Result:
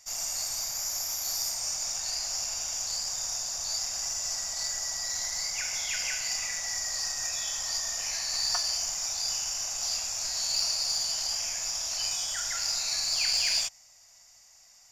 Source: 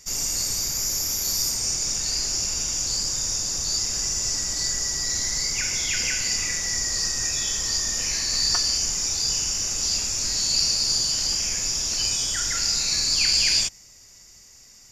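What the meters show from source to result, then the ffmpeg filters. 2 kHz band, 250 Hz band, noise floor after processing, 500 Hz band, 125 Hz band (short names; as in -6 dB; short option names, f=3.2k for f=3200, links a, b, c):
-6.0 dB, under -15 dB, -57 dBFS, -6.0 dB, -17.0 dB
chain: -af "aeval=exprs='0.398*(cos(1*acos(clip(val(0)/0.398,-1,1)))-cos(1*PI/2))+0.0141*(cos(6*acos(clip(val(0)/0.398,-1,1)))-cos(6*PI/2))+0.00251*(cos(7*acos(clip(val(0)/0.398,-1,1)))-cos(7*PI/2))':c=same,lowshelf=f=510:t=q:w=3:g=-10,volume=-6.5dB"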